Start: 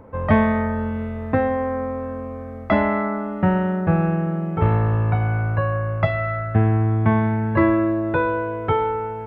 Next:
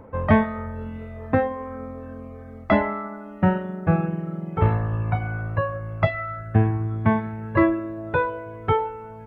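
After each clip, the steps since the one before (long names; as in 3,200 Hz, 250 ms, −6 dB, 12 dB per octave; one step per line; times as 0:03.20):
reverb reduction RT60 1.2 s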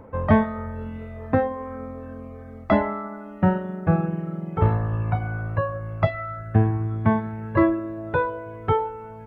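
dynamic equaliser 2,400 Hz, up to −6 dB, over −44 dBFS, Q 1.6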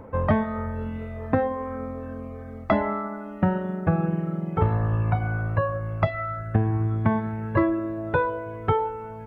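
downward compressor 6 to 1, threshold −19 dBFS, peak gain reduction 8.5 dB
level +2 dB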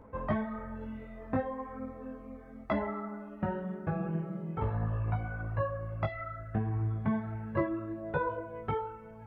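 multi-voice chorus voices 6, 1 Hz, delay 17 ms, depth 3 ms
level −6.5 dB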